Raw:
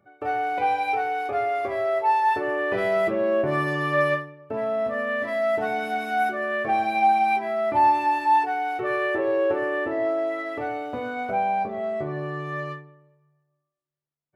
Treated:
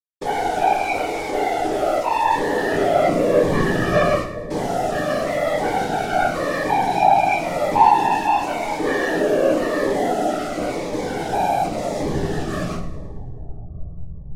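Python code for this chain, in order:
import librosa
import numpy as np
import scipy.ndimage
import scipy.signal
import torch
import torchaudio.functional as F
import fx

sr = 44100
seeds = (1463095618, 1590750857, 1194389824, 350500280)

p1 = fx.delta_hold(x, sr, step_db=-31.5)
p2 = scipy.signal.sosfilt(scipy.signal.bessel(2, 6900.0, 'lowpass', norm='mag', fs=sr, output='sos'), p1)
p3 = fx.fold_sine(p2, sr, drive_db=6, ceiling_db=-10.5)
p4 = p2 + (p3 * librosa.db_to_amplitude(-11.5))
p5 = fx.whisperise(p4, sr, seeds[0])
p6 = p5 + fx.echo_split(p5, sr, split_hz=830.0, low_ms=403, high_ms=107, feedback_pct=52, wet_db=-14.0, dry=0)
p7 = fx.room_shoebox(p6, sr, seeds[1], volume_m3=37.0, walls='mixed', distance_m=0.44)
y = fx.notch_cascade(p7, sr, direction='falling', hz=0.93)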